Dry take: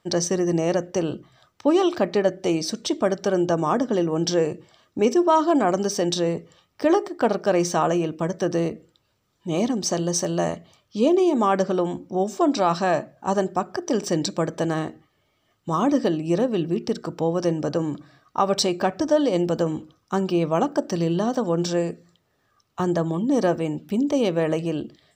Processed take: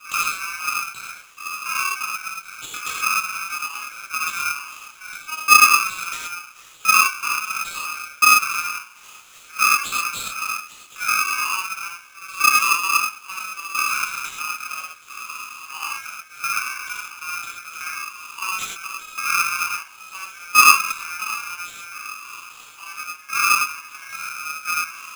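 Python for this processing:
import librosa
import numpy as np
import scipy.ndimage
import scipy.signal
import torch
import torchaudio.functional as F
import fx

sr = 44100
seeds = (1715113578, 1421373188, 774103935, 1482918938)

p1 = x + 0.5 * 10.0 ** (-30.0 / 20.0) * np.sign(x)
p2 = fx.rider(p1, sr, range_db=4, speed_s=0.5)
p3 = p1 + (p2 * librosa.db_to_amplitude(3.0))
p4 = scipy.signal.sosfilt(scipy.signal.ellip(3, 1.0, 40, [670.0, 4900.0], 'bandstop', fs=sr, output='sos'), p3)
p5 = fx.air_absorb(p4, sr, metres=290.0)
p6 = fx.harmonic_tremolo(p5, sr, hz=3.7, depth_pct=50, crossover_hz=450.0)
p7 = fx.highpass(p6, sr, hz=81.0, slope=6)
p8 = fx.high_shelf(p7, sr, hz=5100.0, db=10.5)
p9 = p8 + fx.echo_single(p8, sr, ms=853, db=-16.5, dry=0)
p10 = fx.level_steps(p9, sr, step_db=9)
p11 = fx.filter_lfo_highpass(p10, sr, shape='saw_up', hz=0.73, low_hz=720.0, high_hz=1500.0, q=5.6)
p12 = fx.rev_gated(p11, sr, seeds[0], gate_ms=150, shape='flat', drr_db=-6.5)
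p13 = p12 * np.sign(np.sin(2.0 * np.pi * 1900.0 * np.arange(len(p12)) / sr))
y = p13 * librosa.db_to_amplitude(-5.0)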